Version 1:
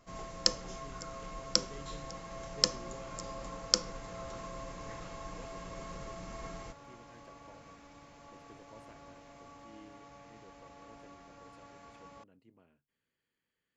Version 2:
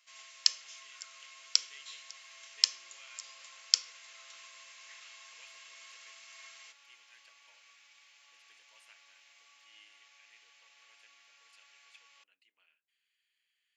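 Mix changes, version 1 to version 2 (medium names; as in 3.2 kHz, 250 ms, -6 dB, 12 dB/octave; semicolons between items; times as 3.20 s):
speech +6.0 dB; master: add resonant high-pass 2.6 kHz, resonance Q 1.8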